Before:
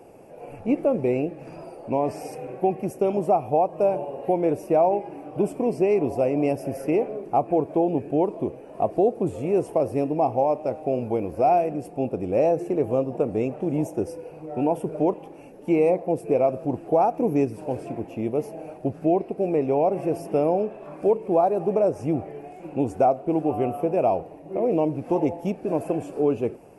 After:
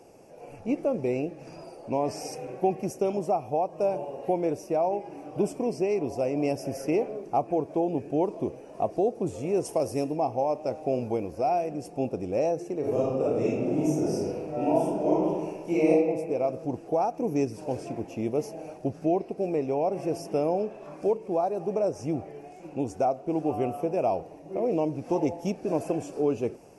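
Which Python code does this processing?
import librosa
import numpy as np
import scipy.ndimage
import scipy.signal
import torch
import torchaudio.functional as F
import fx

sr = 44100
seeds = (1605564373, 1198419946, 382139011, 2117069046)

y = fx.high_shelf(x, sr, hz=fx.line((9.64, 4200.0), (10.15, 7400.0)), db=12.0, at=(9.64, 10.15), fade=0.02)
y = fx.reverb_throw(y, sr, start_s=12.8, length_s=3.09, rt60_s=1.3, drr_db=-9.0)
y = fx.peak_eq(y, sr, hz=5800.0, db=13.0, octaves=0.9)
y = fx.rider(y, sr, range_db=4, speed_s=0.5)
y = y * librosa.db_to_amplitude(-6.5)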